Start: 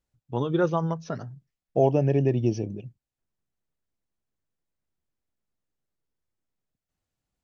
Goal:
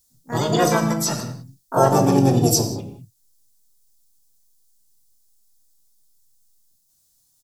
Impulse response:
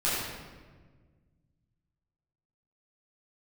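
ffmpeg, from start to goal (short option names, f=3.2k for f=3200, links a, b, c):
-filter_complex "[0:a]aexciter=amount=12.1:drive=5.8:freq=3.9k,asplit=4[a][b][c][d];[b]asetrate=37084,aresample=44100,atempo=1.18921,volume=-8dB[e];[c]asetrate=58866,aresample=44100,atempo=0.749154,volume=-2dB[f];[d]asetrate=88200,aresample=44100,atempo=0.5,volume=-5dB[g];[a][e][f][g]amix=inputs=4:normalize=0,asplit=2[h][i];[1:a]atrim=start_sample=2205,afade=t=out:st=0.25:d=0.01,atrim=end_sample=11466[j];[i][j]afir=irnorm=-1:irlink=0,volume=-13.5dB[k];[h][k]amix=inputs=2:normalize=0"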